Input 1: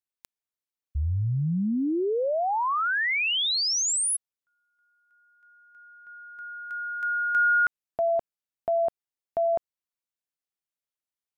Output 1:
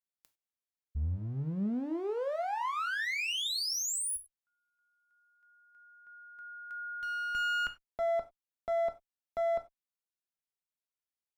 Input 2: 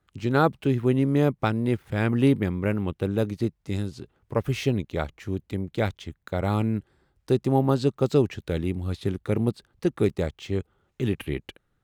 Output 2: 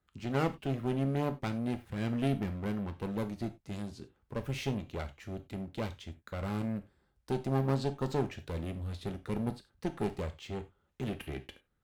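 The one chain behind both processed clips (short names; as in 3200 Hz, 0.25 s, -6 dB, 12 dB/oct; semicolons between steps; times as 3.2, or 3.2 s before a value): one-sided clip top -28 dBFS; non-linear reverb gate 0.12 s falling, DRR 7.5 dB; gain -7.5 dB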